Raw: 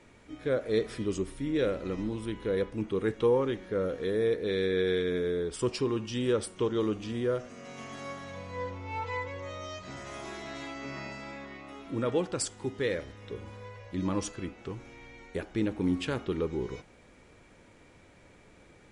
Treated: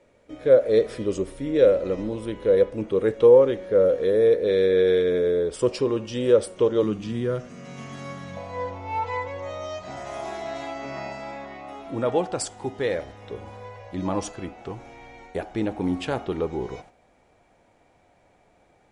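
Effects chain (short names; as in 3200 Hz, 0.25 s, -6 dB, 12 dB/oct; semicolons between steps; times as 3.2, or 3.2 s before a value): gate -51 dBFS, range -9 dB; bell 550 Hz +14 dB 0.62 oct, from 6.83 s 160 Hz, from 8.37 s 730 Hz; gain +2 dB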